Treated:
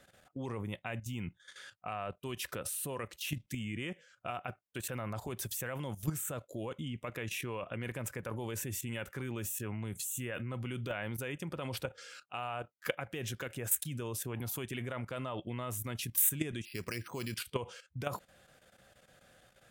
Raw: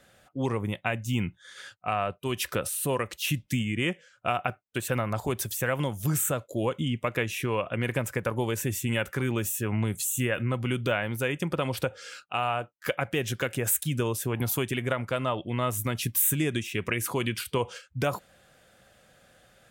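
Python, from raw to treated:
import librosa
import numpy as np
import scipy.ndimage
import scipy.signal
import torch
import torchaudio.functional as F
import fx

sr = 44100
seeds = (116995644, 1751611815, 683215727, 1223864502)

y = fx.level_steps(x, sr, step_db=12)
y = fx.resample_bad(y, sr, factor=6, down='filtered', up='hold', at=(16.65, 17.36))
y = y * 10.0 ** (-2.5 / 20.0)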